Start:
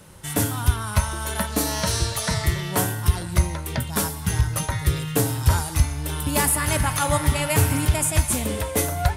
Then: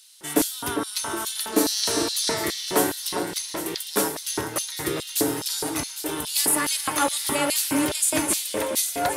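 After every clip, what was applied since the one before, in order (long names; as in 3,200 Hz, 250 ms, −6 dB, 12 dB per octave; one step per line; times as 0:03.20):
delay that swaps between a low-pass and a high-pass 403 ms, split 1,900 Hz, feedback 67%, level −7 dB
auto-filter high-pass square 2.4 Hz 330–4,100 Hz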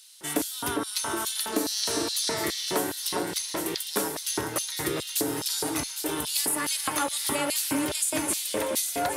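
high-pass filter 44 Hz 24 dB per octave
downward compressor 4 to 1, threshold −24 dBFS, peak gain reduction 8.5 dB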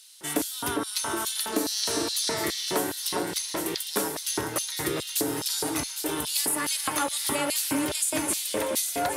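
harmonic generator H 5 −40 dB, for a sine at −11 dBFS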